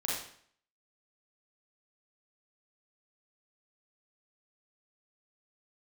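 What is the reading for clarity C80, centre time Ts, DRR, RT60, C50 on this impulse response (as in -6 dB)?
5.0 dB, 60 ms, -5.5 dB, 0.60 s, 0.0 dB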